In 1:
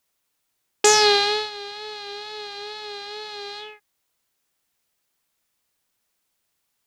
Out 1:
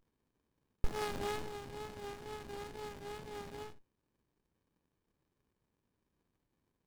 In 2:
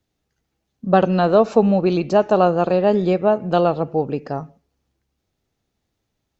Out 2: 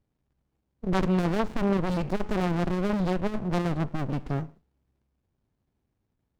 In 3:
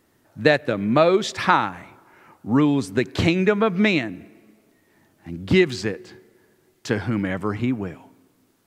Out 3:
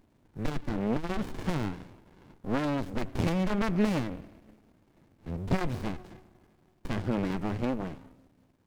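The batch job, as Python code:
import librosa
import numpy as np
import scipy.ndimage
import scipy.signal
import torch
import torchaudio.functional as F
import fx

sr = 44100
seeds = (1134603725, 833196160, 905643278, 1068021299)

y = fx.diode_clip(x, sr, knee_db=-18.0)
y = fx.running_max(y, sr, window=65)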